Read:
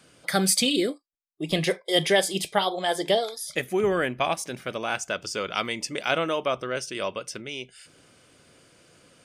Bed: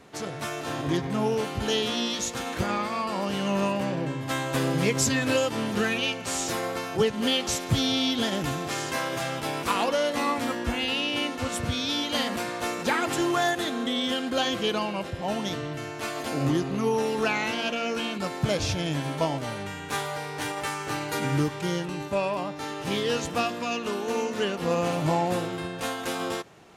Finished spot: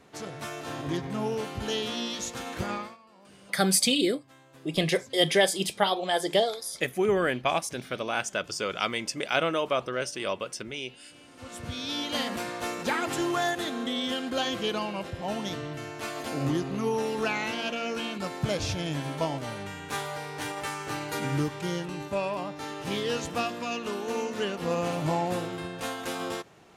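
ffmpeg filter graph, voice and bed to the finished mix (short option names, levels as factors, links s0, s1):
-filter_complex "[0:a]adelay=3250,volume=0.891[s0];[1:a]volume=9.44,afade=t=out:st=2.73:d=0.24:silence=0.0749894,afade=t=in:st=11.26:d=0.82:silence=0.0630957[s1];[s0][s1]amix=inputs=2:normalize=0"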